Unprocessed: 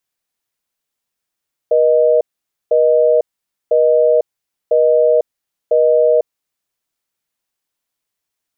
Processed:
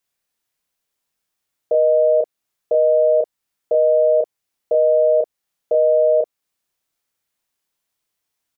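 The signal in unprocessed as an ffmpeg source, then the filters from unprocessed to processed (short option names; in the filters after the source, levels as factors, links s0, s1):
-f lavfi -i "aevalsrc='0.266*(sin(2*PI*480*t)+sin(2*PI*620*t))*clip(min(mod(t,1),0.5-mod(t,1))/0.005,0,1)':d=4.68:s=44100"
-filter_complex "[0:a]alimiter=limit=0.335:level=0:latency=1:release=277,asplit=2[s0][s1];[s1]adelay=32,volume=0.631[s2];[s0][s2]amix=inputs=2:normalize=0"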